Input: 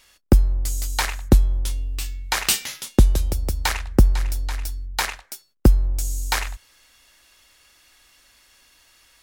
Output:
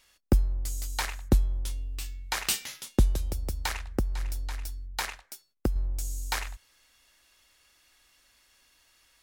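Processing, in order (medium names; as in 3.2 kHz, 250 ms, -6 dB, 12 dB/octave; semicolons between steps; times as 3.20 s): 3.14–5.76 s: compression 6:1, threshold -16 dBFS, peak gain reduction 8 dB; trim -8 dB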